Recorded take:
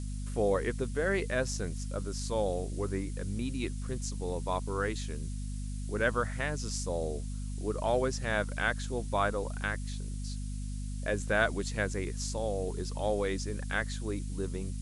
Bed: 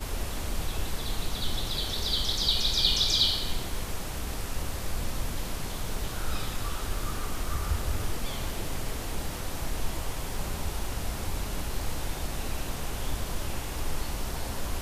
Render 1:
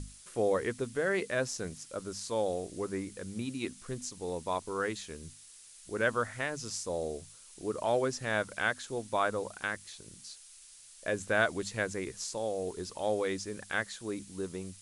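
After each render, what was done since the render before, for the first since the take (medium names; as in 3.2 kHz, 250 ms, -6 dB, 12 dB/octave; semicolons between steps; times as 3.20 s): hum notches 50/100/150/200/250 Hz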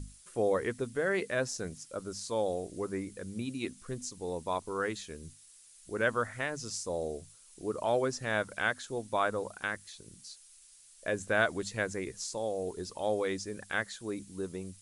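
noise reduction 6 dB, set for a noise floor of -54 dBFS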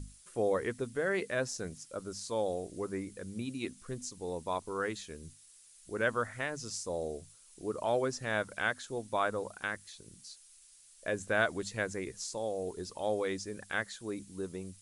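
trim -1.5 dB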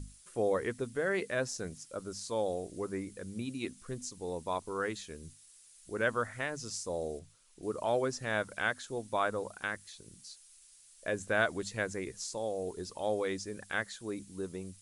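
7.19–7.63 s: low-pass 3.4 kHz 6 dB/octave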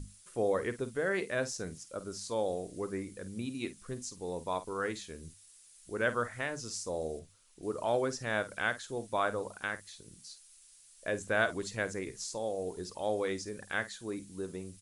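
doubling 50 ms -13.5 dB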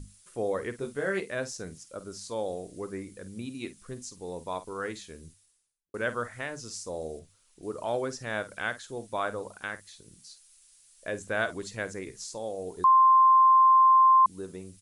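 0.79–1.20 s: doubling 21 ms -2.5 dB; 5.14–5.94 s: studio fade out; 12.84–14.26 s: bleep 1.05 kHz -15 dBFS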